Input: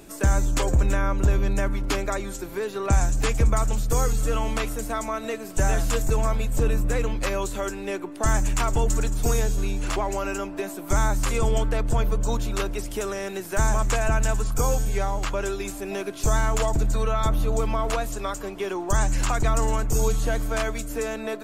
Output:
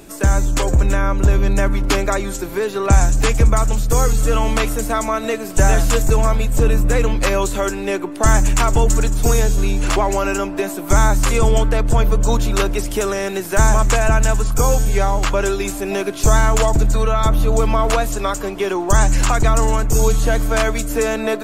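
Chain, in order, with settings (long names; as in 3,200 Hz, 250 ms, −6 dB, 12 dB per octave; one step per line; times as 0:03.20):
speech leveller 2 s
level +7.5 dB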